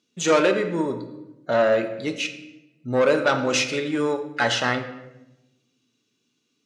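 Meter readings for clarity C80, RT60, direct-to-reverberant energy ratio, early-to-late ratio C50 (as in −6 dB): 12.0 dB, 0.95 s, 6.0 dB, 9.5 dB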